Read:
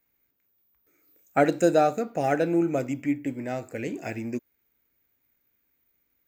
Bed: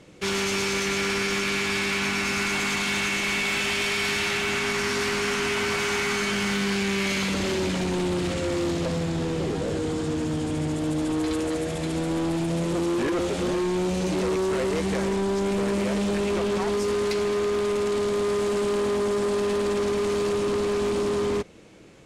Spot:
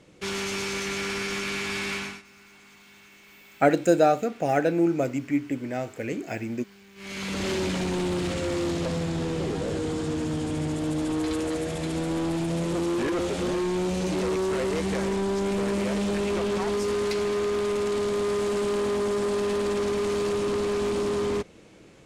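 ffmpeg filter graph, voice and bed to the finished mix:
ffmpeg -i stem1.wav -i stem2.wav -filter_complex "[0:a]adelay=2250,volume=1dB[link_01];[1:a]volume=21dB,afade=type=out:start_time=1.94:duration=0.28:silence=0.0749894,afade=type=in:start_time=6.95:duration=0.55:silence=0.0530884[link_02];[link_01][link_02]amix=inputs=2:normalize=0" out.wav

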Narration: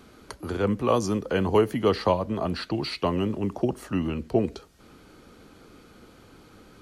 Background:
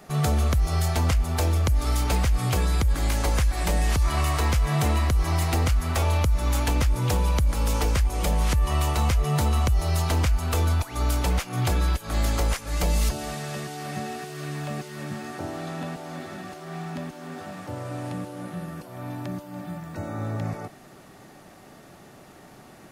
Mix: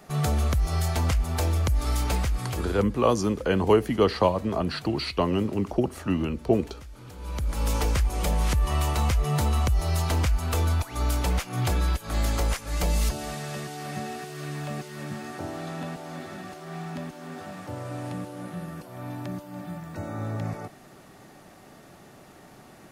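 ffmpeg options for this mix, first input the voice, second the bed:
ffmpeg -i stem1.wav -i stem2.wav -filter_complex "[0:a]adelay=2150,volume=1dB[link_01];[1:a]volume=18.5dB,afade=type=out:start_time=2.07:duration=0.92:silence=0.1,afade=type=in:start_time=7.17:duration=0.51:silence=0.0944061[link_02];[link_01][link_02]amix=inputs=2:normalize=0" out.wav

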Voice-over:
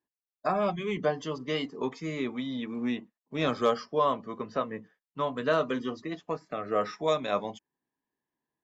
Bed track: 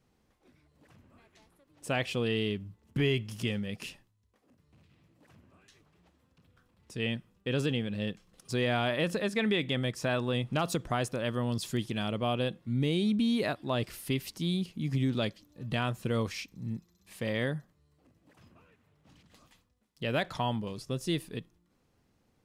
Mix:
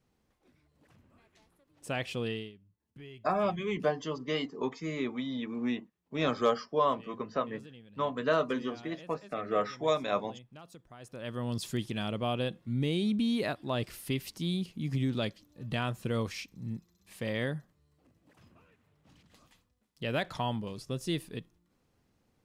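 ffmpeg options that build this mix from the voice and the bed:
ffmpeg -i stem1.wav -i stem2.wav -filter_complex "[0:a]adelay=2800,volume=-1.5dB[link_01];[1:a]volume=16dB,afade=type=out:start_time=2.27:duration=0.25:silence=0.133352,afade=type=in:start_time=10.99:duration=0.58:silence=0.105925[link_02];[link_01][link_02]amix=inputs=2:normalize=0" out.wav

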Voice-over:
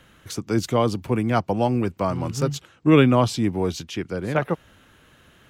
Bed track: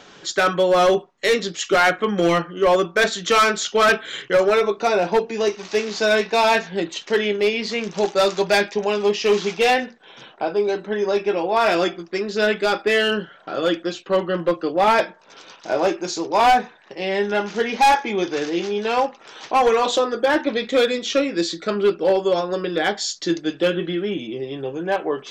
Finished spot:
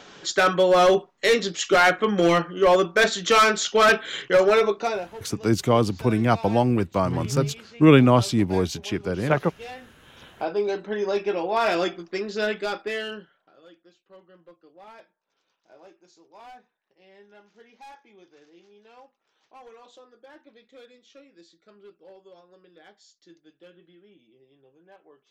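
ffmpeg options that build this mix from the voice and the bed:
ffmpeg -i stem1.wav -i stem2.wav -filter_complex "[0:a]adelay=4950,volume=1dB[link_01];[1:a]volume=16.5dB,afade=type=out:start_time=4.66:duration=0.44:silence=0.0891251,afade=type=in:start_time=9.8:duration=0.61:silence=0.133352,afade=type=out:start_time=12.16:duration=1.37:silence=0.0473151[link_02];[link_01][link_02]amix=inputs=2:normalize=0" out.wav

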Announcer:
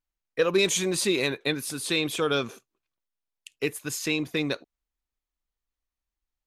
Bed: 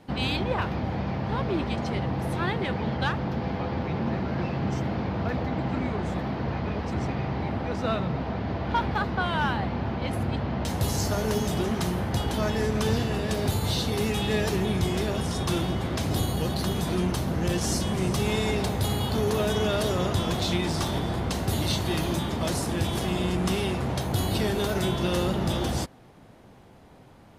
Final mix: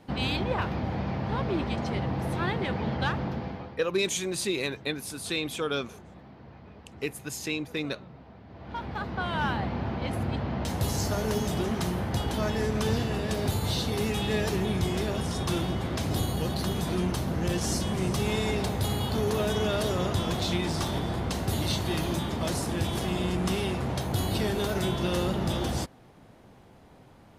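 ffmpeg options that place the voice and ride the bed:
ffmpeg -i stem1.wav -i stem2.wav -filter_complex "[0:a]adelay=3400,volume=-4.5dB[link_01];[1:a]volume=16dB,afade=type=out:start_time=3.21:duration=0.58:silence=0.125893,afade=type=in:start_time=8.49:duration=1.01:silence=0.133352[link_02];[link_01][link_02]amix=inputs=2:normalize=0" out.wav

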